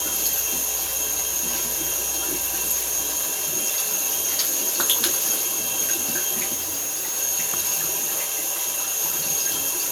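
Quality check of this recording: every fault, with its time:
0:06.54–0:07.18: clipping −23.5 dBFS

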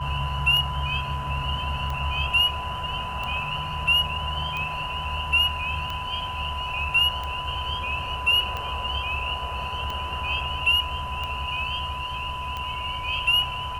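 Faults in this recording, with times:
scratch tick 45 rpm −18 dBFS
whistle 1,000 Hz −31 dBFS

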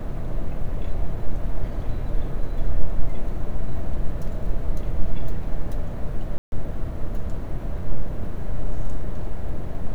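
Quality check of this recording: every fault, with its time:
0:06.38–0:06.52: drop-out 141 ms

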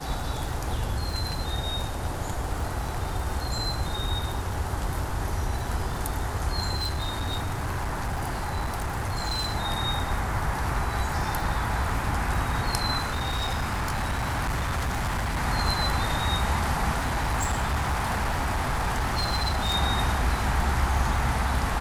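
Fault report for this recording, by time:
surface crackle 64 per second −33 dBFS
0:06.75–0:09.54: clipping −24.5 dBFS
0:12.98–0:15.39: clipping −24 dBFS
0:16.93–0:19.76: clipping −22 dBFS

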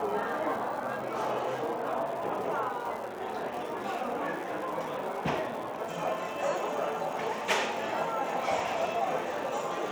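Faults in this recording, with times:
surface crackle 310 per second −39 dBFS

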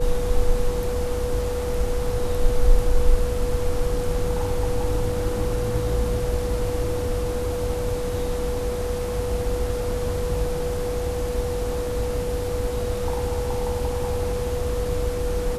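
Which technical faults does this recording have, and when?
whistle 490 Hz −26 dBFS

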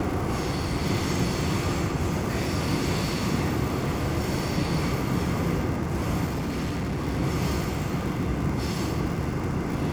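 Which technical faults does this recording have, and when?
surface crackle 97 per second −31 dBFS
0:06.25–0:07.08: clipping −25 dBFS

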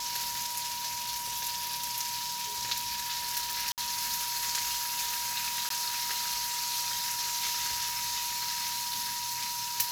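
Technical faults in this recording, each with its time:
whistle 960 Hz −38 dBFS
0:03.72–0:03.78: drop-out 58 ms
0:05.69–0:05.70: drop-out 13 ms

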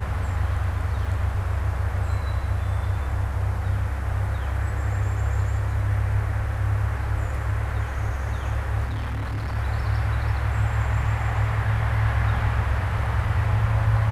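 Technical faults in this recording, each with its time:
0:01.05: drop-out 2.9 ms
0:08.85–0:09.56: clipping −24.5 dBFS

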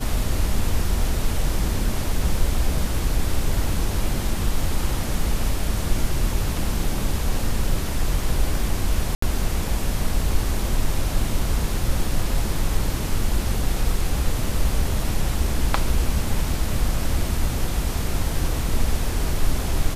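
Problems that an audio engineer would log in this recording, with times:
0:09.15–0:09.22: drop-out 74 ms

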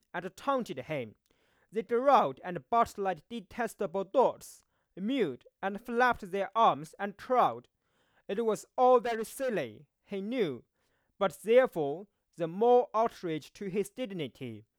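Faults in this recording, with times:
0:09.05–0:09.50: clipping −29 dBFS

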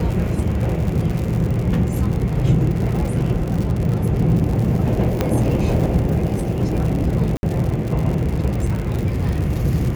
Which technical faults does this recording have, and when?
surface crackle 100 per second −24 dBFS
0:00.87: drop-out 2.8 ms
0:05.21: click −5 dBFS
0:07.37–0:07.43: drop-out 61 ms

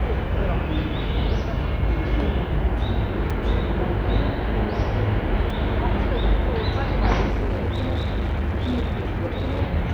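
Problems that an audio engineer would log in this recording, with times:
0:03.30: drop-out 4.7 ms
0:05.50: drop-out 3.6 ms
0:07.30–0:09.61: clipping −19.5 dBFS

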